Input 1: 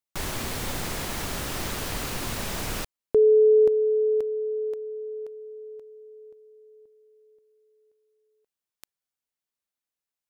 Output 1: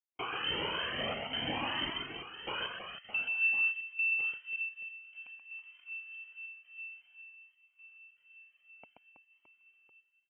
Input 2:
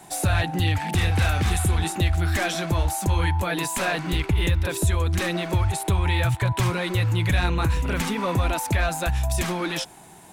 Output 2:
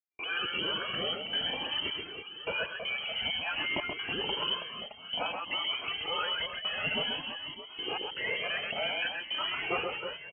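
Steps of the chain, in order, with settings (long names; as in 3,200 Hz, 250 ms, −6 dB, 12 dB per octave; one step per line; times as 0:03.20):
rippled gain that drifts along the octave scale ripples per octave 0.62, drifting −2.2 Hz, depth 18 dB
voice inversion scrambler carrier 3,100 Hz
high-pass filter 250 Hz 12 dB per octave
delay with a high-pass on its return 774 ms, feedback 69%, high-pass 2,000 Hz, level −21 dB
brickwall limiter −15 dBFS
gate pattern ".xxxxx.xxx...x" 79 BPM −60 dB
downward compressor, threshold −21 dBFS
spectral tilt −4.5 dB per octave
reverse bouncing-ball delay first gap 130 ms, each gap 1.5×, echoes 5
flanger whose copies keep moving one way rising 0.53 Hz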